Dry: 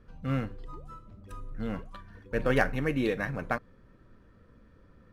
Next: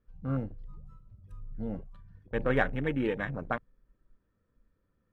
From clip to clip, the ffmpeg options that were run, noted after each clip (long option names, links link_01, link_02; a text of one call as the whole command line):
ffmpeg -i in.wav -af "afwtdn=0.0158,volume=-1.5dB" out.wav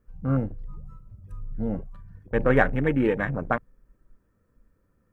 ffmpeg -i in.wav -af "equalizer=frequency=3600:width_type=o:width=0.91:gain=-8.5,volume=7.5dB" out.wav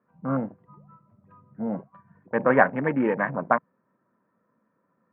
ffmpeg -i in.wav -af "highpass=frequency=170:width=0.5412,highpass=frequency=170:width=1.3066,equalizer=frequency=310:width_type=q:width=4:gain=-4,equalizer=frequency=440:width_type=q:width=4:gain=-4,equalizer=frequency=650:width_type=q:width=4:gain=4,equalizer=frequency=1000:width_type=q:width=4:gain=9,lowpass=frequency=2200:width=0.5412,lowpass=frequency=2200:width=1.3066,volume=1.5dB" out.wav